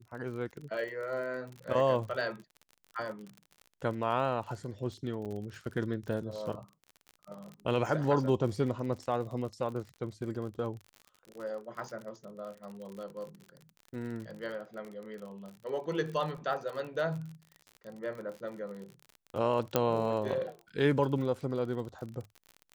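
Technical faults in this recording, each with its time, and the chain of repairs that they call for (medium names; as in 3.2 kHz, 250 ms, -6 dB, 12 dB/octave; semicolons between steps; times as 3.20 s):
crackle 44 per s -39 dBFS
5.25 s: dropout 2.7 ms
19.76 s: pop -11 dBFS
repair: de-click; interpolate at 5.25 s, 2.7 ms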